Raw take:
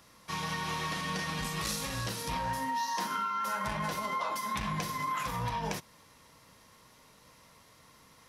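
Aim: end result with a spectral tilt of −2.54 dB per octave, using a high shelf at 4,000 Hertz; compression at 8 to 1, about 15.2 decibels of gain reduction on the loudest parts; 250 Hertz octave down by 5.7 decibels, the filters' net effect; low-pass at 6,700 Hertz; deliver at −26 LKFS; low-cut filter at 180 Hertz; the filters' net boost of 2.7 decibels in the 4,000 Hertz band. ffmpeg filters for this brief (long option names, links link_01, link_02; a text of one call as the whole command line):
ffmpeg -i in.wav -af "highpass=180,lowpass=6700,equalizer=frequency=250:width_type=o:gain=-5,highshelf=frequency=4000:gain=-5,equalizer=frequency=4000:width_type=o:gain=7,acompressor=threshold=-46dB:ratio=8,volume=22.5dB" out.wav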